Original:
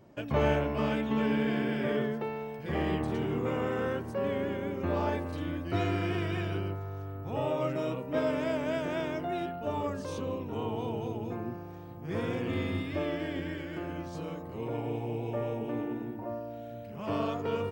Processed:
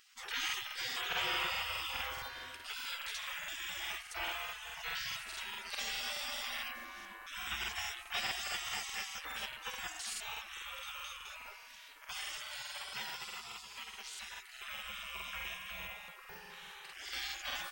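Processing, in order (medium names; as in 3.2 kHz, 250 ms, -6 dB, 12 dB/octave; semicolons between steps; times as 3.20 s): 12.36–13.93 s: high-pass 180 Hz 6 dB/octave; spectral gate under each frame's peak -30 dB weak; crackling interface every 0.21 s, samples 2048, repeat, from 0.45 s; trim +14.5 dB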